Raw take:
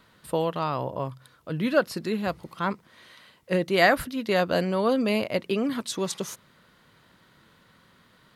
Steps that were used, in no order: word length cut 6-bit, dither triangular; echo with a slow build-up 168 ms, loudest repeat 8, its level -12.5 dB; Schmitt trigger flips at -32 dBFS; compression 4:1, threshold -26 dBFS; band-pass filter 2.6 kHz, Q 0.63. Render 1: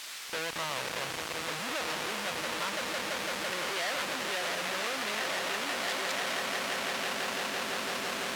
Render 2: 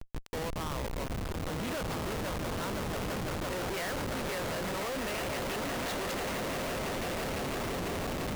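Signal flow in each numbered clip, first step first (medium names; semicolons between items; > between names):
echo with a slow build-up > Schmitt trigger > word length cut > band-pass filter > compression; word length cut > band-pass filter > compression > echo with a slow build-up > Schmitt trigger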